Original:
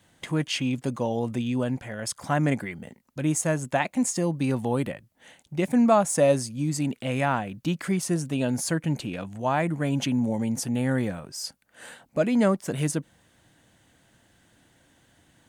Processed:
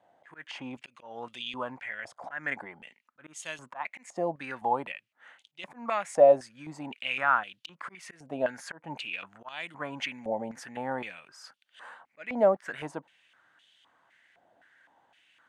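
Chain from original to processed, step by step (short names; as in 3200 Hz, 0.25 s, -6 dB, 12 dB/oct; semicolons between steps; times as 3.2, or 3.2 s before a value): auto swell 0.219 s; stepped band-pass 3.9 Hz 700–3200 Hz; gain +8.5 dB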